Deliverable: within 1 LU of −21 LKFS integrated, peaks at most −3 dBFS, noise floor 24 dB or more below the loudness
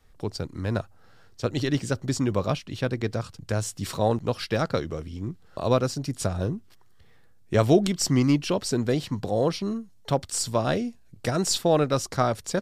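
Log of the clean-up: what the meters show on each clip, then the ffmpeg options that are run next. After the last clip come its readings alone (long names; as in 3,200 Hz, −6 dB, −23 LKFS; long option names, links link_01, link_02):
integrated loudness −26.5 LKFS; sample peak −7.5 dBFS; target loudness −21.0 LKFS
→ -af "volume=5.5dB,alimiter=limit=-3dB:level=0:latency=1"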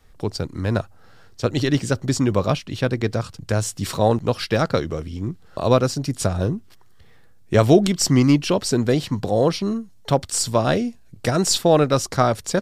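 integrated loudness −21.0 LKFS; sample peak −3.0 dBFS; background noise floor −47 dBFS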